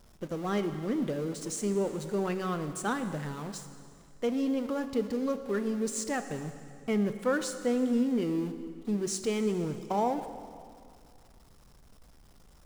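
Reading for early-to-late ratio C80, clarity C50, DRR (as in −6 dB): 10.5 dB, 10.0 dB, 9.0 dB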